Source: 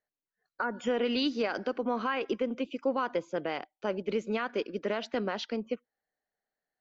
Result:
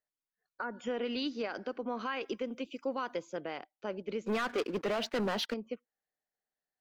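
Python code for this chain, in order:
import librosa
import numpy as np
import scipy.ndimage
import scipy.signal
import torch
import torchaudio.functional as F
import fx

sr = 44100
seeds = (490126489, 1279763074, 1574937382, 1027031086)

y = fx.high_shelf(x, sr, hz=4500.0, db=11.5, at=(1.99, 3.37))
y = fx.leveller(y, sr, passes=3, at=(4.26, 5.54))
y = y * 10.0 ** (-6.0 / 20.0)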